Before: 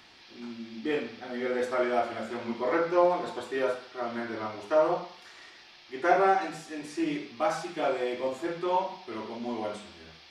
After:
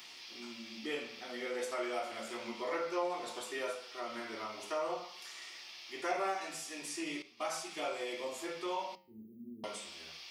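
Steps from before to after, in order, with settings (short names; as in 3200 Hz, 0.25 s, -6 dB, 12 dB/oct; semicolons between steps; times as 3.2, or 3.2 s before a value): tilt +3.5 dB/oct; resonator 72 Hz, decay 0.26 s, harmonics all, mix 60%; 8.95–9.64 inverse Chebyshev band-stop 740–6900 Hz, stop band 60 dB; compressor 1.5:1, threshold -51 dBFS, peak gain reduction 10 dB; thirty-one-band EQ 800 Hz -3 dB, 1600 Hz -8 dB, 4000 Hz -5 dB; 7.22–7.71 expander -45 dBFS; flange 0.36 Hz, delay 8.1 ms, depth 4.2 ms, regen -86%; gain +9.5 dB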